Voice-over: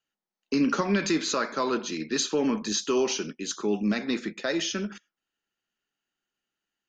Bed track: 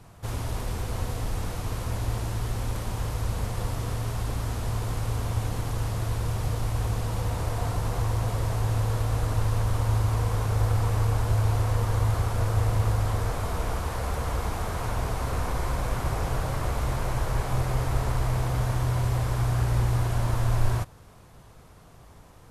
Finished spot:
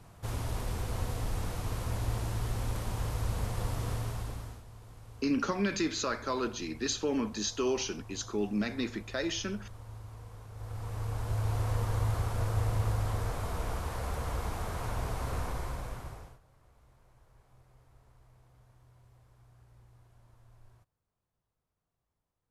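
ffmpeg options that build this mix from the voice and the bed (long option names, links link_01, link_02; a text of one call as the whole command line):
ffmpeg -i stem1.wav -i stem2.wav -filter_complex "[0:a]adelay=4700,volume=-5.5dB[link_01];[1:a]volume=12dB,afade=type=out:start_time=3.93:duration=0.71:silence=0.125893,afade=type=in:start_time=10.53:duration=1.17:silence=0.158489,afade=type=out:start_time=15.37:duration=1.02:silence=0.0334965[link_02];[link_01][link_02]amix=inputs=2:normalize=0" out.wav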